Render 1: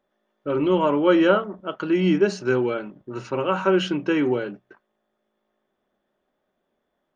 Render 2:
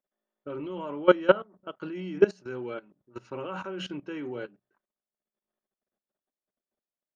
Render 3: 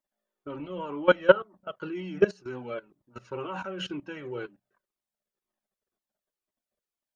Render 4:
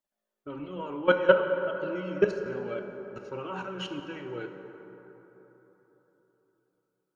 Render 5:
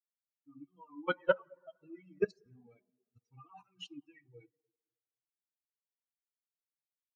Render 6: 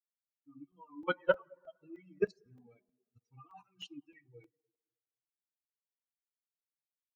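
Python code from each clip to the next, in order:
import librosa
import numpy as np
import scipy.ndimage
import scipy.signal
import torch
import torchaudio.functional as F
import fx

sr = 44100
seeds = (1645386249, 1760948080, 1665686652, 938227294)

y1 = fx.level_steps(x, sr, step_db=15)
y1 = fx.upward_expand(y1, sr, threshold_db=-48.0, expansion=1.5)
y1 = y1 * librosa.db_to_amplitude(2.5)
y2 = fx.comb_cascade(y1, sr, direction='falling', hz=2.0)
y2 = y2 * librosa.db_to_amplitude(5.5)
y3 = fx.rev_plate(y2, sr, seeds[0], rt60_s=4.0, hf_ratio=0.4, predelay_ms=0, drr_db=5.0)
y3 = y3 * librosa.db_to_amplitude(-2.0)
y4 = fx.bin_expand(y3, sr, power=3.0)
y4 = y4 * librosa.db_to_amplitude(-5.5)
y5 = fx.buffer_crackle(y4, sr, first_s=0.41, period_s=0.31, block=128, kind='zero')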